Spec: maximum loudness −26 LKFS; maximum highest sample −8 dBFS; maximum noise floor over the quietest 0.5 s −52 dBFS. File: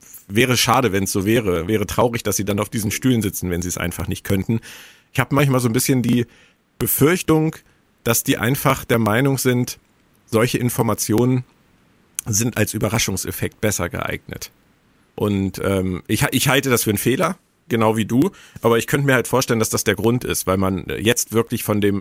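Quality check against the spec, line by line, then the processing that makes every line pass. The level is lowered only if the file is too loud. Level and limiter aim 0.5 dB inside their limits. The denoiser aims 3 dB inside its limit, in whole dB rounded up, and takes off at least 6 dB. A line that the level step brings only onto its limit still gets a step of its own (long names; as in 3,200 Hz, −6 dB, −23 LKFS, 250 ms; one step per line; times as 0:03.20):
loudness −19.0 LKFS: out of spec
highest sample −2.5 dBFS: out of spec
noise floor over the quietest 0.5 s −57 dBFS: in spec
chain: level −7.5 dB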